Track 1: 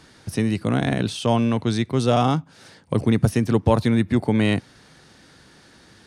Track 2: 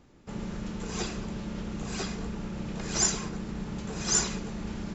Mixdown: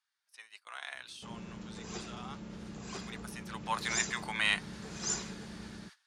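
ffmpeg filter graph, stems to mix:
ffmpeg -i stem1.wav -i stem2.wav -filter_complex "[0:a]highpass=frequency=1000:width=0.5412,highpass=frequency=1000:width=1.3066,flanger=delay=2.4:depth=6.4:regen=62:speed=0.37:shape=sinusoidal,volume=6.5dB,afade=type=out:start_time=0.9:duration=0.38:silence=0.334965,afade=type=in:start_time=2.26:duration=0.25:silence=0.421697,afade=type=in:start_time=3.4:duration=0.68:silence=0.223872[link_01];[1:a]adelay=950,volume=-16dB[link_02];[link_01][link_02]amix=inputs=2:normalize=0,dynaudnorm=framelen=230:gausssize=5:maxgain=7dB,agate=range=-15dB:threshold=-52dB:ratio=16:detection=peak,highpass=67" out.wav

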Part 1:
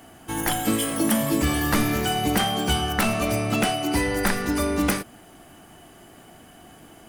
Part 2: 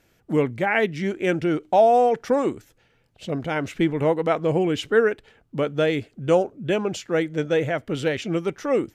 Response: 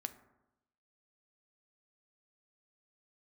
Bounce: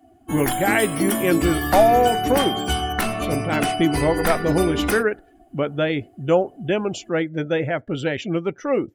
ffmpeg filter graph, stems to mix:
-filter_complex "[0:a]aecho=1:1:2.8:0.38,volume=-4dB,asplit=2[link_01][link_02];[link_02]volume=-4.5dB[link_03];[1:a]bandreject=frequency=460:width=12,volume=1.5dB[link_04];[2:a]atrim=start_sample=2205[link_05];[link_03][link_05]afir=irnorm=-1:irlink=0[link_06];[link_01][link_04][link_06]amix=inputs=3:normalize=0,afftdn=noise_reduction=20:noise_floor=-39"

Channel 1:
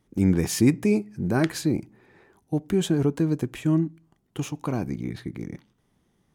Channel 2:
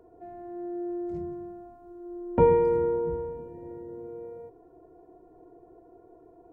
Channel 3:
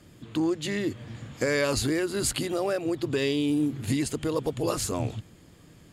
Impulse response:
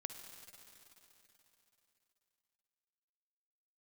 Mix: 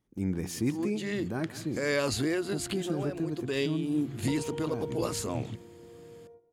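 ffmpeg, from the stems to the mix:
-filter_complex "[0:a]volume=-10.5dB,asplit=3[link_01][link_02][link_03];[link_02]volume=-15dB[link_04];[1:a]agate=range=-15dB:threshold=-43dB:ratio=16:detection=peak,acompressor=threshold=-26dB:ratio=6,adelay=1900,volume=-10.5dB,asplit=2[link_05][link_06];[link_06]volume=-14.5dB[link_07];[2:a]highpass=81,adynamicequalizer=threshold=0.00501:dfrequency=5900:dqfactor=0.7:tfrequency=5900:tqfactor=0.7:attack=5:release=100:ratio=0.375:range=2.5:mode=cutabove:tftype=highshelf,adelay=350,volume=-2.5dB[link_08];[link_03]apad=whole_len=276609[link_09];[link_08][link_09]sidechaincompress=threshold=-36dB:ratio=8:attack=6:release=223[link_10];[link_04][link_07]amix=inputs=2:normalize=0,aecho=0:1:173:1[link_11];[link_01][link_05][link_10][link_11]amix=inputs=4:normalize=0"

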